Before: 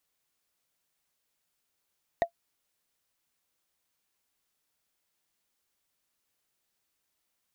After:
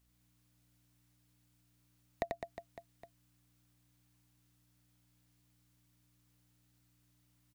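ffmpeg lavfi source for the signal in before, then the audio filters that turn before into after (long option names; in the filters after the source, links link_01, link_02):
-f lavfi -i "aevalsrc='0.158*pow(10,-3*t/0.09)*sin(2*PI*681*t)+0.0531*pow(10,-3*t/0.027)*sin(2*PI*1877.5*t)+0.0178*pow(10,-3*t/0.012)*sin(2*PI*3680.1*t)+0.00596*pow(10,-3*t/0.007)*sin(2*PI*6083.4*t)+0.002*pow(10,-3*t/0.004)*sin(2*PI*9084.5*t)':duration=0.45:sample_rate=44100"
-filter_complex "[0:a]acrossover=split=470[link_01][link_02];[link_02]acompressor=threshold=-39dB:ratio=6[link_03];[link_01][link_03]amix=inputs=2:normalize=0,aeval=exprs='val(0)+0.000224*(sin(2*PI*60*n/s)+sin(2*PI*2*60*n/s)/2+sin(2*PI*3*60*n/s)/3+sin(2*PI*4*60*n/s)/4+sin(2*PI*5*60*n/s)/5)':channel_layout=same,aecho=1:1:90|207|359.1|556.8|813.9:0.631|0.398|0.251|0.158|0.1"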